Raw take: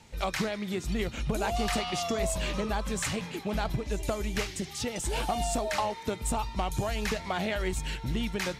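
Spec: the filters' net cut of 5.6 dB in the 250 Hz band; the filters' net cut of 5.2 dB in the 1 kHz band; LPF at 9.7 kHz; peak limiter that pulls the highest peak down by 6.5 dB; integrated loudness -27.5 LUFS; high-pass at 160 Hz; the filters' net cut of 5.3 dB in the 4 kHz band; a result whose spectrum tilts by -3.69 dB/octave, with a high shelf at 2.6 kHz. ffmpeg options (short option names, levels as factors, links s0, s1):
-af "highpass=160,lowpass=9700,equalizer=f=250:t=o:g=-5.5,equalizer=f=1000:t=o:g=-6.5,highshelf=f=2600:g=-3,equalizer=f=4000:t=o:g=-4,volume=3.76,alimiter=limit=0.133:level=0:latency=1"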